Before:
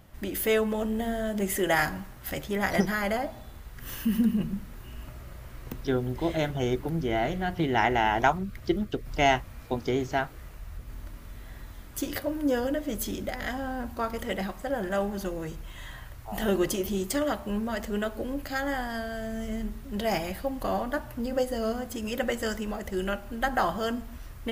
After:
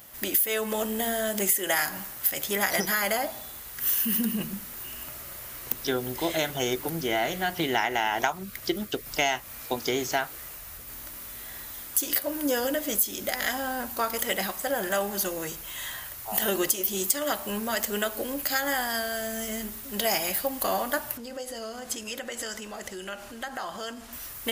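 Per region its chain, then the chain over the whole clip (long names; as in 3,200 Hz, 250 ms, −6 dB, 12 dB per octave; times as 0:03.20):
0:21.17–0:24.13: low-pass filter 7,800 Hz + downward compressor 5 to 1, threshold −36 dBFS
whole clip: RIAA equalisation recording; downward compressor 6 to 1, threshold −26 dBFS; level +4.5 dB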